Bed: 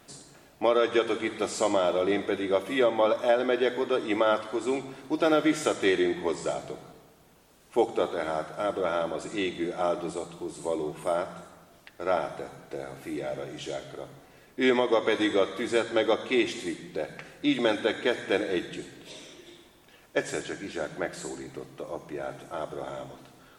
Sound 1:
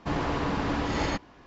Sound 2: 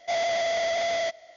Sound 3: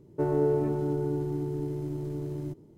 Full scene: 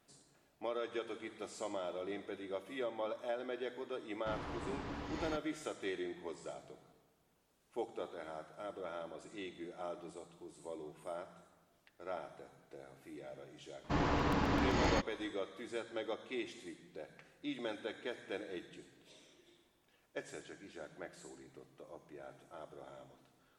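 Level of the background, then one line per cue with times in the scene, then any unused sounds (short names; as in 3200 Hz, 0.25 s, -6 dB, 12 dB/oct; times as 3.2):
bed -16.5 dB
4.2 add 1 -15.5 dB
13.84 add 1 -4.5 dB + crackling interface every 0.13 s, samples 128, repeat, from 0.35
not used: 2, 3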